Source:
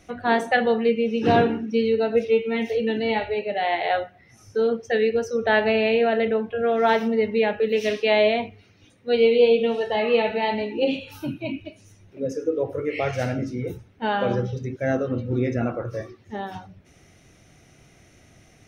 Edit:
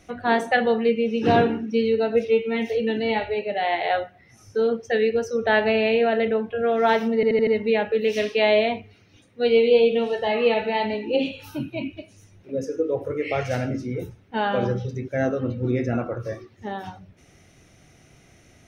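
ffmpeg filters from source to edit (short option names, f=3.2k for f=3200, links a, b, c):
-filter_complex "[0:a]asplit=5[a][b][c][d][e];[a]atrim=end=7.232[f];[b]atrim=start=7.148:end=7.232[g];[c]atrim=start=7.148:end=7.232[h];[d]atrim=start=7.148:end=7.232[i];[e]atrim=start=7.148[j];[f][g]acrossfade=d=0.004:c1=hsin:c2=hsin[k];[k][h]acrossfade=d=0.004:c1=hsin:c2=hsin[l];[l][i]acrossfade=d=0.004:c1=hsin:c2=hsin[m];[m][j]acrossfade=d=0.004:c1=hsin:c2=hsin"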